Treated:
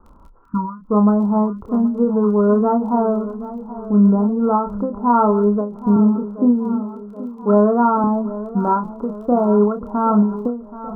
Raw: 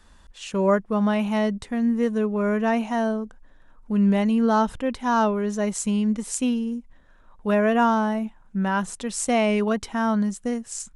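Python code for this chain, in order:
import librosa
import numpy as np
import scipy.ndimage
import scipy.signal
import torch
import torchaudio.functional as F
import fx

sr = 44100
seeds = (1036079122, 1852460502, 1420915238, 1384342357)

y = fx.spec_box(x, sr, start_s=0.44, length_s=0.44, low_hz=320.0, high_hz=890.0, gain_db=-28)
y = fx.highpass(y, sr, hz=140.0, slope=24, at=(5.96, 8.04))
y = fx.rider(y, sr, range_db=3, speed_s=0.5)
y = scipy.signal.sosfilt(scipy.signal.cheby1(6, 6, 1400.0, 'lowpass', fs=sr, output='sos'), y)
y = fx.dmg_crackle(y, sr, seeds[0], per_s=14.0, level_db=-50.0)
y = fx.doubler(y, sr, ms=29.0, db=-6.0)
y = fx.echo_feedback(y, sr, ms=777, feedback_pct=55, wet_db=-15.0)
y = fx.end_taper(y, sr, db_per_s=110.0)
y = y * 10.0 ** (9.0 / 20.0)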